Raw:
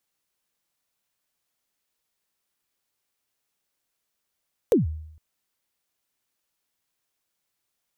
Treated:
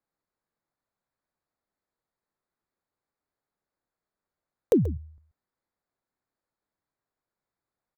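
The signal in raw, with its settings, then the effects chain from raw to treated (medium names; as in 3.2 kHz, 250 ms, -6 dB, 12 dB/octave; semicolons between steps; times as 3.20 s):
kick drum length 0.46 s, from 530 Hz, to 78 Hz, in 143 ms, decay 0.75 s, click on, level -12.5 dB
local Wiener filter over 15 samples; delay 133 ms -16.5 dB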